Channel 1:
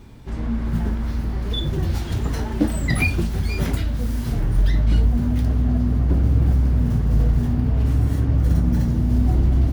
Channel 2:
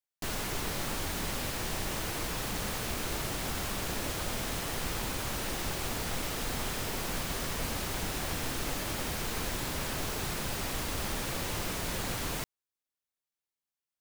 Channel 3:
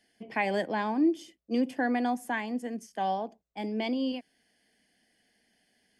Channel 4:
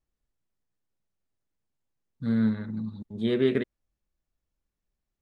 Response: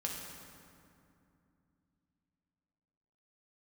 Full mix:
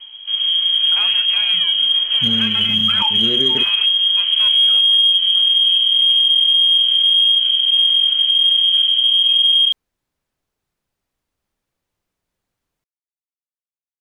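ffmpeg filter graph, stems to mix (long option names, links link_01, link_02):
-filter_complex "[0:a]lowshelf=frequency=87:gain=11,volume=-6dB[link_01];[1:a]adelay=400,volume=-18dB[link_02];[2:a]asoftclip=type=hard:threshold=-32.5dB,adelay=600,volume=3dB[link_03];[3:a]volume=1.5dB,asplit=2[link_04][link_05];[link_05]apad=whole_len=635296[link_06];[link_02][link_06]sidechaingate=range=-33dB:threshold=-34dB:ratio=16:detection=peak[link_07];[link_01][link_03]amix=inputs=2:normalize=0,lowpass=frequency=2800:width_type=q:width=0.5098,lowpass=frequency=2800:width_type=q:width=0.6013,lowpass=frequency=2800:width_type=q:width=0.9,lowpass=frequency=2800:width_type=q:width=2.563,afreqshift=-3300,alimiter=limit=-13dB:level=0:latency=1:release=83,volume=0dB[link_08];[link_07][link_04]amix=inputs=2:normalize=0,acompressor=threshold=-27dB:ratio=6,volume=0dB[link_09];[link_08][link_09]amix=inputs=2:normalize=0,acontrast=42"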